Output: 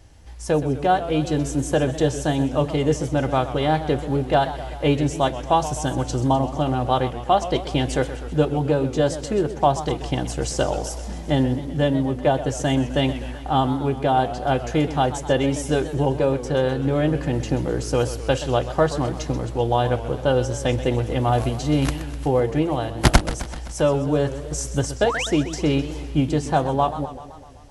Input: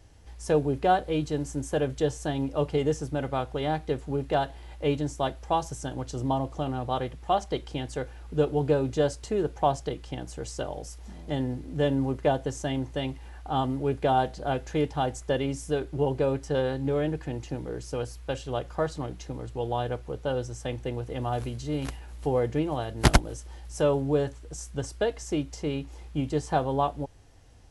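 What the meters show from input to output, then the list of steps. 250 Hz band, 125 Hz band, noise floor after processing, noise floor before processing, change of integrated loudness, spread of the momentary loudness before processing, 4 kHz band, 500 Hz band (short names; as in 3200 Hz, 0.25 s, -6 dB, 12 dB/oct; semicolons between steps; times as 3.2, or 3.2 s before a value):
+8.0 dB, +8.0 dB, -34 dBFS, -44 dBFS, +7.0 dB, 10 LU, +8.0 dB, +6.0 dB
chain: notch 440 Hz, Q 12; painted sound rise, 25.04–25.27, 580–4000 Hz -34 dBFS; vocal rider within 4 dB 0.5 s; warbling echo 0.128 s, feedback 62%, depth 158 cents, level -13 dB; gain +7.5 dB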